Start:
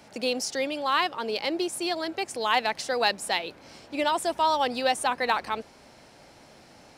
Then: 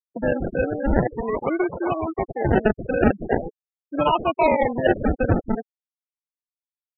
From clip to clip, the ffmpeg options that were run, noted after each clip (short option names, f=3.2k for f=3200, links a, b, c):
-af "acrusher=samples=33:mix=1:aa=0.000001:lfo=1:lforange=19.8:lforate=0.43,lowpass=2.5k,afftfilt=real='re*gte(hypot(re,im),0.0501)':imag='im*gte(hypot(re,im),0.0501)':win_size=1024:overlap=0.75,volume=6dB"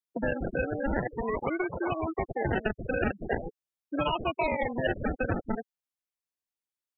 -filter_complex "[0:a]acrossover=split=130|850|1700[a][b][c][d];[a]acompressor=threshold=-35dB:ratio=4[e];[b]acompressor=threshold=-31dB:ratio=4[f];[c]acompressor=threshold=-39dB:ratio=4[g];[d]acompressor=threshold=-34dB:ratio=4[h];[e][f][g][h]amix=inputs=4:normalize=0"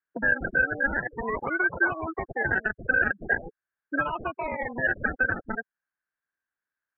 -af "alimiter=limit=-23.5dB:level=0:latency=1:release=385,lowpass=f=1.6k:t=q:w=11,volume=1dB"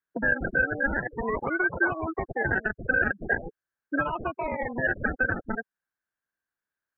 -af "tiltshelf=f=970:g=3"